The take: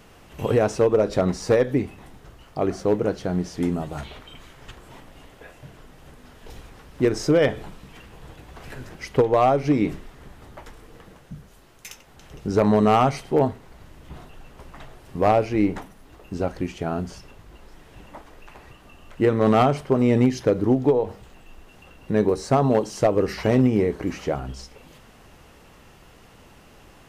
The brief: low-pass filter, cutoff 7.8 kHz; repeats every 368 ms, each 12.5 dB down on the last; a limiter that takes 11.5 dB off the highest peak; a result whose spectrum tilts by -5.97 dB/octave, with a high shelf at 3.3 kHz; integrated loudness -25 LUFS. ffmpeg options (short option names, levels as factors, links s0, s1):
-af "lowpass=7800,highshelf=f=3300:g=-9,alimiter=limit=0.0841:level=0:latency=1,aecho=1:1:368|736|1104:0.237|0.0569|0.0137,volume=2.24"